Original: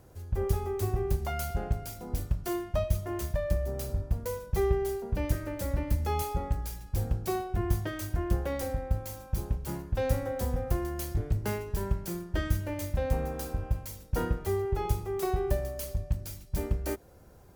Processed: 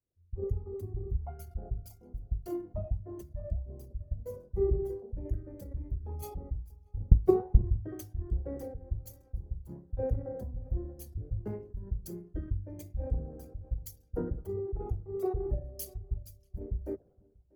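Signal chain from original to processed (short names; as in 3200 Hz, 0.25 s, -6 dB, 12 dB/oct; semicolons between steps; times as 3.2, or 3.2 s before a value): formant sharpening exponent 2; 7–7.64 transient shaper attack +11 dB, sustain -12 dB; flange 1.3 Hz, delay 2.4 ms, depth 9.5 ms, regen -79%; darkening echo 0.639 s, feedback 29%, low-pass 2500 Hz, level -14 dB; three-band expander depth 100%; gain -1.5 dB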